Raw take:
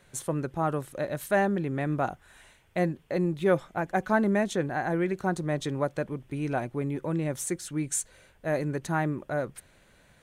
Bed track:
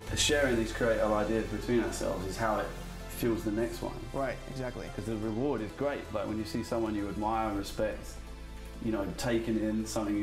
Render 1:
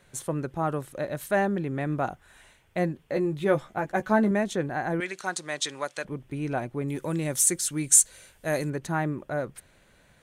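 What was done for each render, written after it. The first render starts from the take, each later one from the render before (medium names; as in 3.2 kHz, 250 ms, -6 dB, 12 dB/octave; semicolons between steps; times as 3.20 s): 3.08–4.31 s: doubling 14 ms -6 dB; 5.00–6.05 s: frequency weighting ITU-R 468; 6.88–8.70 s: peaking EQ 10 kHz +13.5 dB 2.6 oct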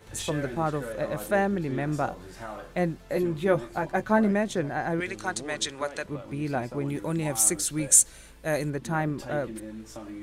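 add bed track -8.5 dB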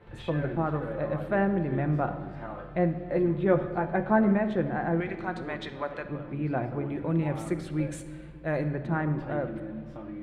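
distance through air 450 m; simulated room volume 2300 m³, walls mixed, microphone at 0.83 m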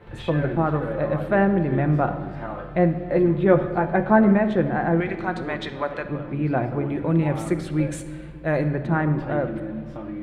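trim +6.5 dB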